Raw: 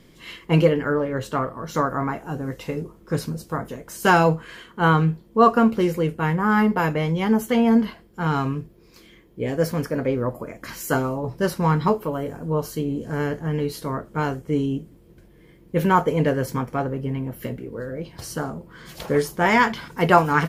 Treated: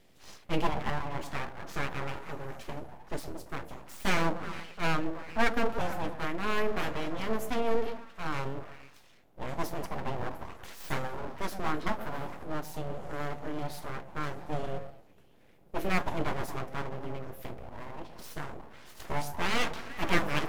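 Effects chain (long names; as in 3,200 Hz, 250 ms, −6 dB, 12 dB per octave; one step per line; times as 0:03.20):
echo through a band-pass that steps 114 ms, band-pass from 290 Hz, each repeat 0.7 octaves, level −6 dB
full-wave rectification
level −8.5 dB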